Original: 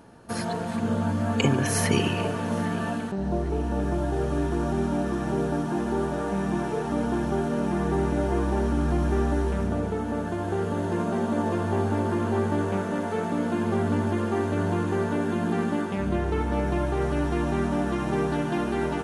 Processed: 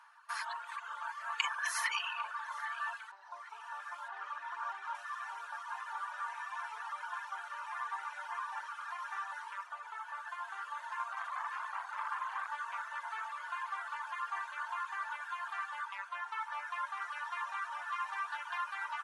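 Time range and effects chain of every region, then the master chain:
4.08–4.95 LPF 2900 Hz 6 dB/oct + low shelf 220 Hz +9.5 dB + fast leveller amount 100%
11.13–12.51 doubler 37 ms -2.5 dB + core saturation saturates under 690 Hz
whole clip: Chebyshev high-pass 1000 Hz, order 5; reverb removal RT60 1.5 s; tilt -4.5 dB/oct; gain +3.5 dB

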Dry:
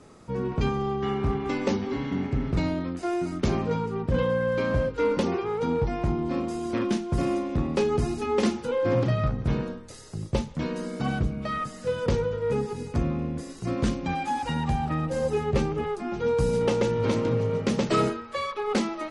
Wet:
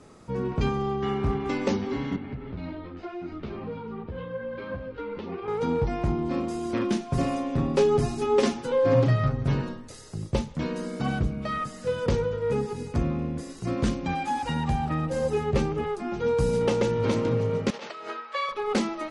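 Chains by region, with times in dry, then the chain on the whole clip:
2.16–5.48 LPF 4000 Hz 24 dB/oct + compressor, threshold -28 dBFS + ensemble effect
7–9.88 notches 50/100/150/200/250/300/350 Hz + comb 7.4 ms, depth 66%
17.7–18.49 negative-ratio compressor -27 dBFS, ratio -0.5 + BPF 720–4400 Hz
whole clip: dry

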